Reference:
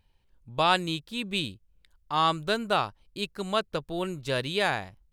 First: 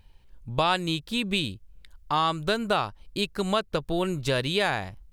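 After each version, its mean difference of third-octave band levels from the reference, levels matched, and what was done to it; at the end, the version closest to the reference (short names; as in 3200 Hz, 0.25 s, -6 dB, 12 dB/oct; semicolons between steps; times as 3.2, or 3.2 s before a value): 2.5 dB: low shelf 68 Hz +6.5 dB; compressor 2.5:1, threshold -32 dBFS, peak gain reduction 10 dB; gain +8 dB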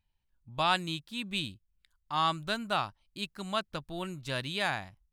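1.5 dB: spectral noise reduction 8 dB; bell 450 Hz -10.5 dB 0.6 oct; gain -3.5 dB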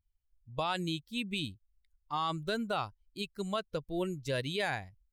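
4.0 dB: per-bin expansion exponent 1.5; limiter -22.5 dBFS, peak gain reduction 11.5 dB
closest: second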